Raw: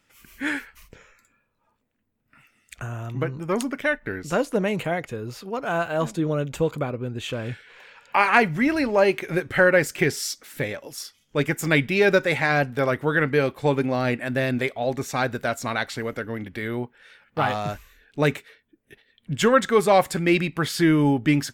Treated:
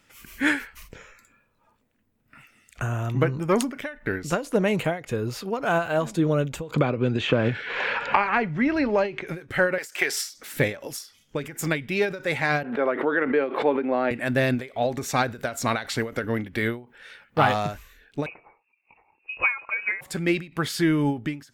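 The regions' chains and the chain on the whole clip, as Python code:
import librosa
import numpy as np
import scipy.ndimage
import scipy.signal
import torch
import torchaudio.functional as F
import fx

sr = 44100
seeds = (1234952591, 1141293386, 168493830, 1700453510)

y = fx.chain(x, sr, fx.air_absorb(metres=150.0),
    fx.band_squash(depth_pct=100), at=(6.74, 9.27))
y = fx.chain(y, sr, fx.highpass(hz=650.0, slope=12),
    fx.band_squash(depth_pct=100), at=(9.78, 10.3))
y = fx.chain(y, sr, fx.highpass(hz=270.0, slope=24),
    fx.air_absorb(metres=490.0),
    fx.pre_swell(db_per_s=83.0), at=(12.63, 14.11))
y = fx.chain(y, sr, fx.freq_invert(carrier_hz=2700),
    fx.low_shelf(hz=320.0, db=-7.0), at=(18.26, 20.01))
y = fx.rider(y, sr, range_db=5, speed_s=0.5)
y = fx.end_taper(y, sr, db_per_s=160.0)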